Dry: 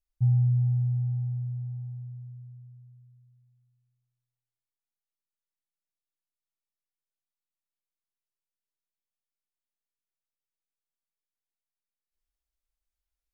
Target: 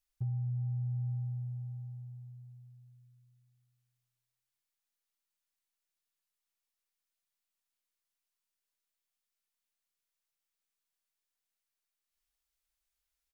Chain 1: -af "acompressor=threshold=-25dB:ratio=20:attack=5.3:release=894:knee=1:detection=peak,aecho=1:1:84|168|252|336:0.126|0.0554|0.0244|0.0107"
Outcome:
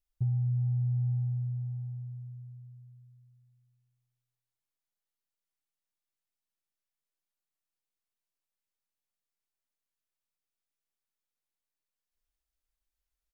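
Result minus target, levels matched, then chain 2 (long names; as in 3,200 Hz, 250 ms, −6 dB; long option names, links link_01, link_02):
500 Hz band −3.0 dB
-af "acompressor=threshold=-25dB:ratio=20:attack=5.3:release=894:knee=1:detection=peak,tiltshelf=frequency=690:gain=-6,aecho=1:1:84|168|252|336:0.126|0.0554|0.0244|0.0107"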